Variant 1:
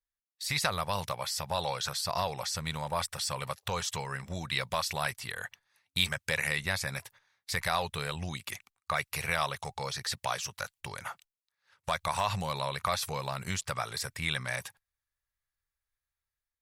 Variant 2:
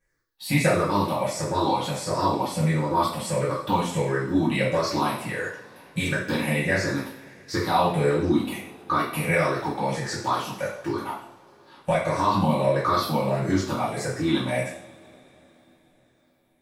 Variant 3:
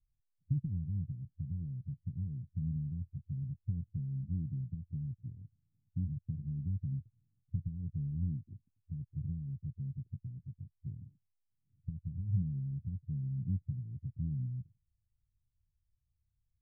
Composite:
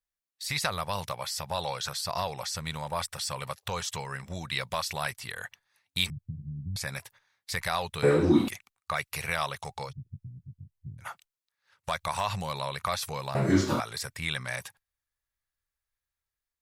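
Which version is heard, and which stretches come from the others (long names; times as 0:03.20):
1
0:06.10–0:06.76: punch in from 3
0:08.03–0:08.48: punch in from 2
0:09.88–0:11.03: punch in from 3, crossfade 0.10 s
0:13.35–0:13.80: punch in from 2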